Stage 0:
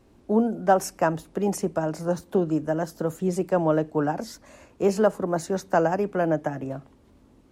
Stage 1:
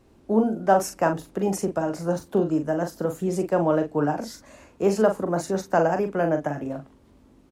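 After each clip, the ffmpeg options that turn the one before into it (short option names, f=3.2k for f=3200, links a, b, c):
-filter_complex "[0:a]asplit=2[a][b];[b]adelay=41,volume=-7dB[c];[a][c]amix=inputs=2:normalize=0"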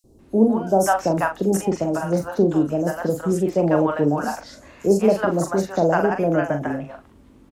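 -filter_complex "[0:a]acrossover=split=710|5000[a][b][c];[a]adelay=40[d];[b]adelay=190[e];[d][e][c]amix=inputs=3:normalize=0,volume=5dB"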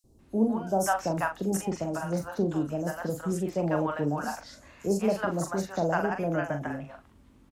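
-af "equalizer=f=400:t=o:w=1.7:g=-6,volume=-5dB"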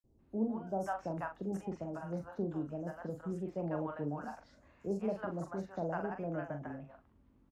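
-af "lowpass=f=1.2k:p=1,volume=-9dB"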